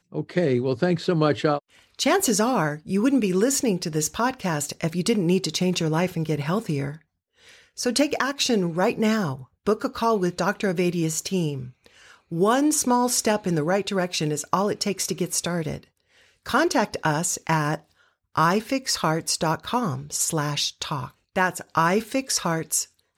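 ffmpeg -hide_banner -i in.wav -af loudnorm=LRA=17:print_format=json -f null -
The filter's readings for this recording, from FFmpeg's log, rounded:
"input_i" : "-23.9",
"input_tp" : "-6.1",
"input_lra" : "2.5",
"input_thresh" : "-34.2",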